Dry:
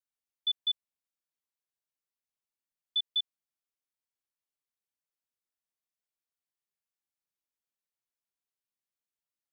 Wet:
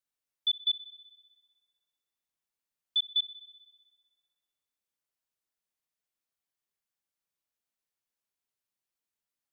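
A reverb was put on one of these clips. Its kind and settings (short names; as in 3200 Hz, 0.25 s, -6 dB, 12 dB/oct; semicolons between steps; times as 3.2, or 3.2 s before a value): spring tank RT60 1.5 s, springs 33 ms, chirp 70 ms, DRR 12.5 dB; gain +2 dB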